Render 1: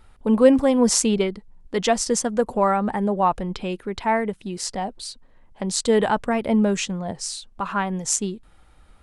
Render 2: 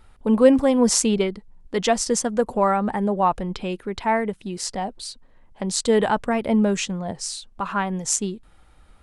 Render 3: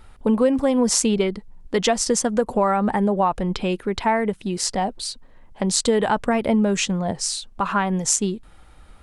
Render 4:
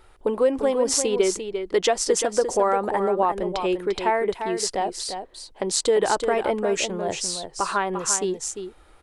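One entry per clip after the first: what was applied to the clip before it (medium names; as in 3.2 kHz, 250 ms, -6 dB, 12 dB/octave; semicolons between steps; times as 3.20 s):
no audible change
compression 4:1, threshold -21 dBFS, peak gain reduction 11 dB; trim +5 dB
resonant low shelf 280 Hz -6 dB, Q 3; delay 347 ms -8 dB; trim -2.5 dB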